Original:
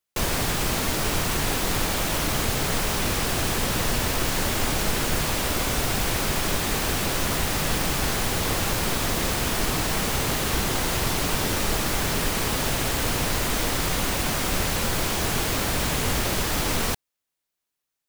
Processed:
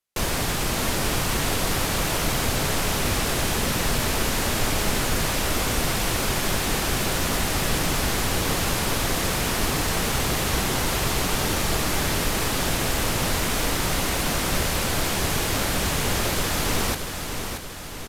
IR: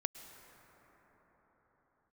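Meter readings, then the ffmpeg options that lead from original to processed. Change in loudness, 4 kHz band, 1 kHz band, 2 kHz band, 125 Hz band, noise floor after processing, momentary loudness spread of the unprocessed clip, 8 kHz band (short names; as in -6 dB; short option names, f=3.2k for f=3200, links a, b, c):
+0.5 dB, +1.0 dB, +1.0 dB, +1.0 dB, +1.0 dB, -31 dBFS, 0 LU, +1.0 dB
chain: -af "aresample=32000,aresample=44100,aecho=1:1:629|1258|1887|2516|3145|3774|4403:0.447|0.241|0.13|0.0703|0.038|0.0205|0.0111"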